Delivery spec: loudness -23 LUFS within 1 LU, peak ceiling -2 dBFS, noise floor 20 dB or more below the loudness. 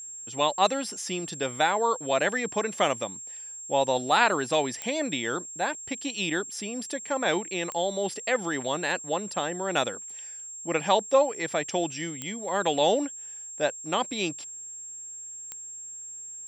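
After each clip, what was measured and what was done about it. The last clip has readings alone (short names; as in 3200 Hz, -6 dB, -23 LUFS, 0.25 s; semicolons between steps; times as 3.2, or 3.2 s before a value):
clicks 4; steady tone 7500 Hz; tone level -38 dBFS; loudness -28.0 LUFS; peak -6.0 dBFS; loudness target -23.0 LUFS
-> de-click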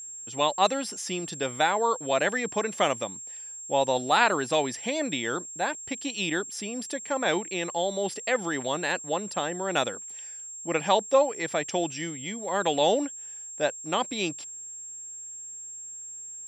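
clicks 0; steady tone 7500 Hz; tone level -38 dBFS
-> notch 7500 Hz, Q 30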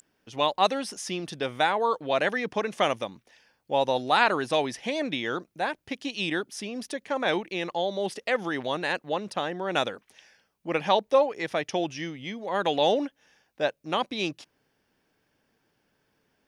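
steady tone none; loudness -28.0 LUFS; peak -6.0 dBFS; loudness target -23.0 LUFS
-> gain +5 dB; limiter -2 dBFS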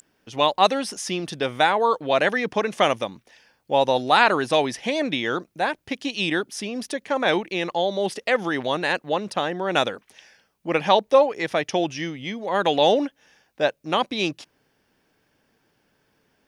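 loudness -23.0 LUFS; peak -2.0 dBFS; noise floor -68 dBFS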